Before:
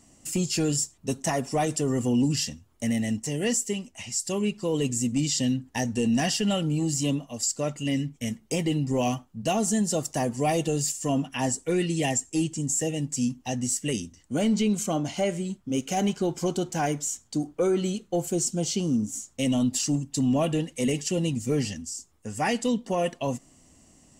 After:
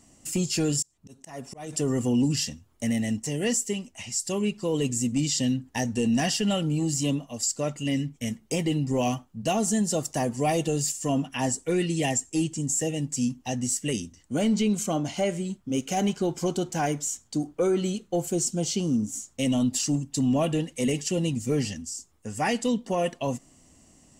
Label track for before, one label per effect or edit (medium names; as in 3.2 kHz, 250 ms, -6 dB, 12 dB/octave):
0.810000	1.730000	slow attack 436 ms